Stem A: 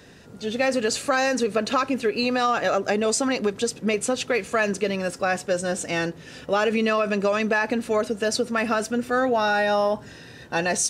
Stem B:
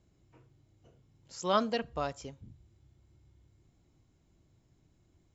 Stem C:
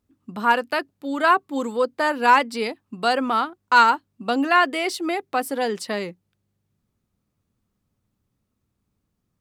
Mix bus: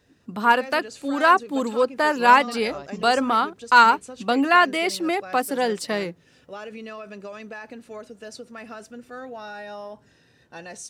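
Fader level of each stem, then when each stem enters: -15.5, -5.0, +1.0 dB; 0.00, 0.75, 0.00 s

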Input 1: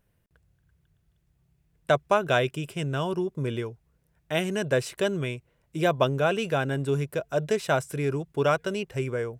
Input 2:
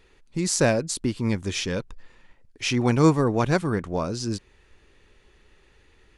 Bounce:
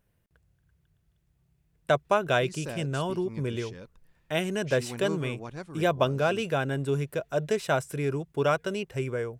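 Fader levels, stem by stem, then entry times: -1.5, -17.5 dB; 0.00, 2.05 s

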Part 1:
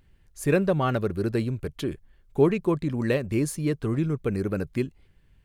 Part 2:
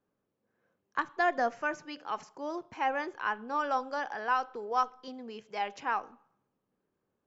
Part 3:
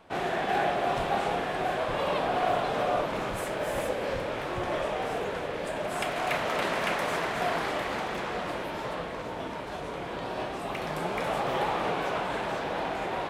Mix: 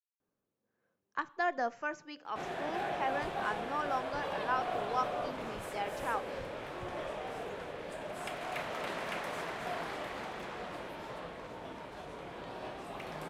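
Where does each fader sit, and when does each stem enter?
off, -4.5 dB, -9.5 dB; off, 0.20 s, 2.25 s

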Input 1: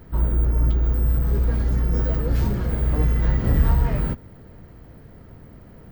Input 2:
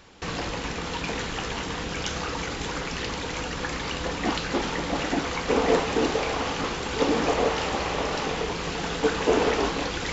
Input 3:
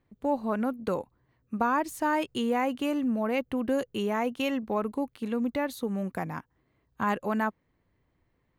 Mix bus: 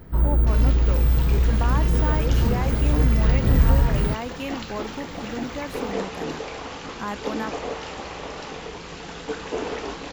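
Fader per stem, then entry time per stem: +1.0, -7.0, -3.5 dB; 0.00, 0.25, 0.00 s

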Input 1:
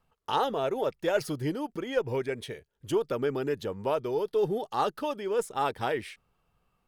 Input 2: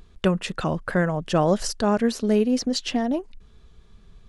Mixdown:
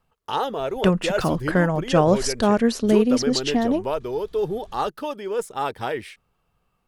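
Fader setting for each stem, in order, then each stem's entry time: +2.5, +2.5 dB; 0.00, 0.60 s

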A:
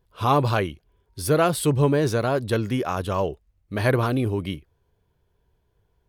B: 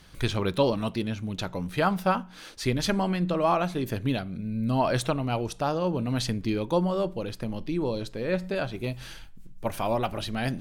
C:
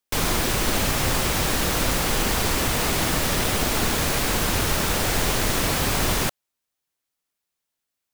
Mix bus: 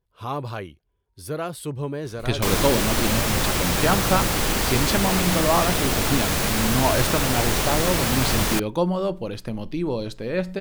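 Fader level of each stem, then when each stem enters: -9.5, +2.5, 0.0 dB; 0.00, 2.05, 2.30 s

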